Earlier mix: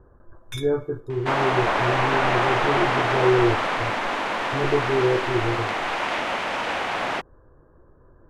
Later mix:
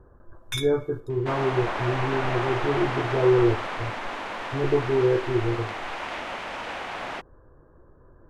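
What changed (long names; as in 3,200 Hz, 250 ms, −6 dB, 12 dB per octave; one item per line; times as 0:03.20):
first sound +5.5 dB
second sound −7.5 dB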